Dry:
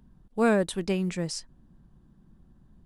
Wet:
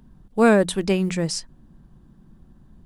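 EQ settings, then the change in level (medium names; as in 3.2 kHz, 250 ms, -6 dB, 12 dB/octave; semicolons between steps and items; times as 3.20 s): hum notches 60/120/180 Hz; +7.0 dB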